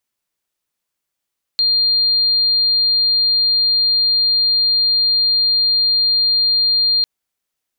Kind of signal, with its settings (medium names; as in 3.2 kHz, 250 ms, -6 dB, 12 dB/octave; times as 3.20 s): tone sine 4.2 kHz -12 dBFS 5.45 s